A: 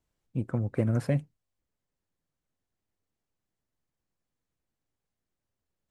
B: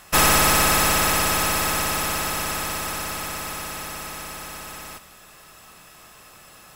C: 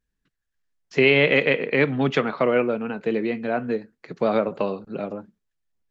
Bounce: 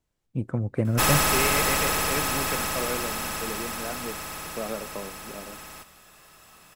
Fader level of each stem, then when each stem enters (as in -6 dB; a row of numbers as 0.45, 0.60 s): +2.0, -5.0, -12.0 dB; 0.00, 0.85, 0.35 s